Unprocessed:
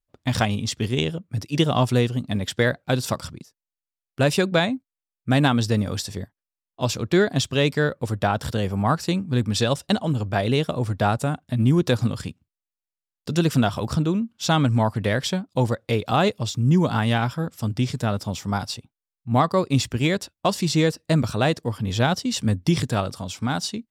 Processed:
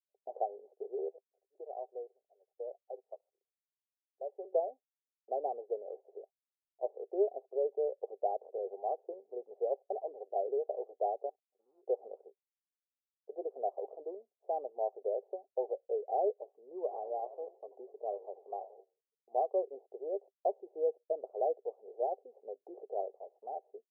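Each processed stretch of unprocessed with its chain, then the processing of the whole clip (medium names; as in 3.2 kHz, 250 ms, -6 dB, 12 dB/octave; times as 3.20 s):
1.08–4.45 s: high-pass 1.3 kHz 6 dB/octave + tape spacing loss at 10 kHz 34 dB
11.29–11.83 s: sorted samples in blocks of 32 samples + amplifier tone stack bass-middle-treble 6-0-2
16.48–19.39 s: small resonant body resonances 1.1 kHz, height 14 dB, ringing for 60 ms + frequency-shifting echo 85 ms, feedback 46%, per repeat -140 Hz, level -15 dB
whole clip: gate -36 dBFS, range -14 dB; Chebyshev band-pass 390–780 Hz, order 4; trim -7.5 dB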